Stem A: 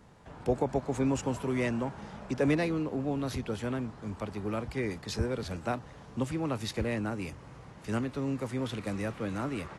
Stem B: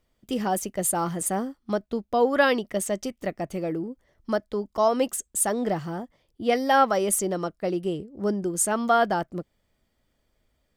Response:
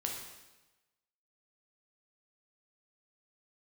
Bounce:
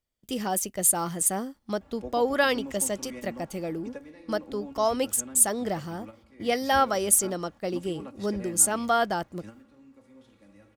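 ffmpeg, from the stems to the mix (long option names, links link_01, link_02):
-filter_complex "[0:a]aecho=1:1:3.6:0.71,adelay=1550,volume=-13.5dB,asplit=2[link_01][link_02];[link_02]volume=-14dB[link_03];[1:a]agate=range=-13dB:threshold=-57dB:ratio=16:detection=peak,highshelf=frequency=3100:gain=9.5,volume=-4dB,asplit=2[link_04][link_05];[link_05]apad=whole_len=500070[link_06];[link_01][link_06]sidechaingate=range=-21dB:threshold=-44dB:ratio=16:detection=peak[link_07];[2:a]atrim=start_sample=2205[link_08];[link_03][link_08]afir=irnorm=-1:irlink=0[link_09];[link_07][link_04][link_09]amix=inputs=3:normalize=0,equalizer=frequency=83:width_type=o:width=1:gain=3"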